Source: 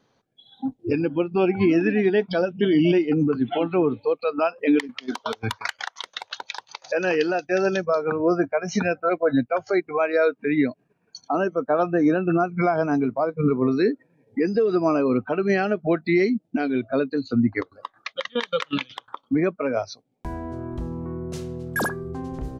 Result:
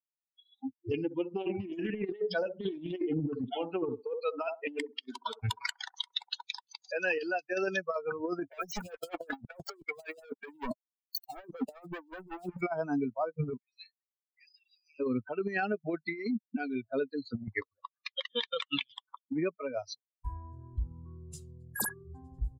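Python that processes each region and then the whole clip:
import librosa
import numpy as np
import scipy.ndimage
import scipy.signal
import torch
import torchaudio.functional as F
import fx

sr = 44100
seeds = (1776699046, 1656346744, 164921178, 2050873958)

y = fx.chain(x, sr, fx.echo_wet_bandpass(ms=66, feedback_pct=36, hz=540.0, wet_db=-6.0),
    fx.doppler_dist(depth_ms=0.25), at=(0.81, 6.45))
y = fx.chain(y, sr, fx.leveller(passes=5),
    fx.stagger_phaser(hz=5.3), at=(8.5, 12.61))
y = fx.chain(y, sr, fx.steep_highpass(hz=2100.0, slope=48),
    fx.high_shelf(hz=4900.0, db=-11.0), at=(13.57, 15.0))
y = fx.bin_expand(y, sr, power=2.0)
y = fx.high_shelf(y, sr, hz=7300.0, db=11.0)
y = fx.over_compress(y, sr, threshold_db=-30.0, ratio=-0.5)
y = F.gain(torch.from_numpy(y), -4.0).numpy()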